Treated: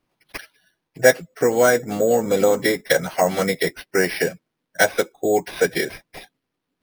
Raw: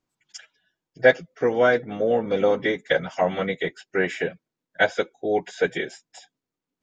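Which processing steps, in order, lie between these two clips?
in parallel at +3 dB: compressor, threshold -27 dBFS, peak gain reduction 16 dB; on the sum: careless resampling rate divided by 6×, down none, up hold

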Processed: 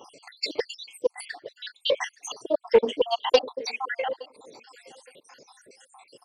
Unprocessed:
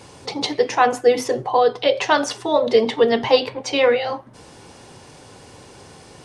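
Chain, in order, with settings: random spectral dropouts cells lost 80%; HPF 380 Hz 12 dB/oct; feedback echo 0.867 s, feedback 22%, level -23 dB; Doppler distortion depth 0.16 ms

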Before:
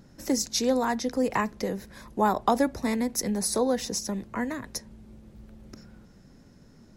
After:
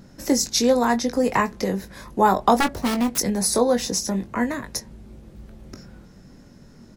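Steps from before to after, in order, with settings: 2.6–3.18 self-modulated delay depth 0.97 ms; doubler 21 ms -7.5 dB; gain +5.5 dB

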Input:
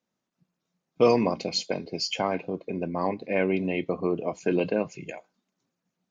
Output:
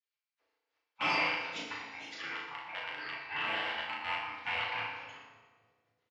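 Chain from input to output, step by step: rattling part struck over -30 dBFS, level -26 dBFS; spectral gate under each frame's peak -25 dB weak; low shelf 380 Hz -7 dB; hard clip -34.5 dBFS, distortion -13 dB; BPF 110–3200 Hz; air absorption 51 m; doubler 36 ms -4.5 dB; split-band echo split 510 Hz, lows 0.274 s, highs 0.119 s, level -12.5 dB; FDN reverb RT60 1.2 s, low-frequency decay 0.8×, high-frequency decay 0.7×, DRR -1.5 dB; gain +7.5 dB

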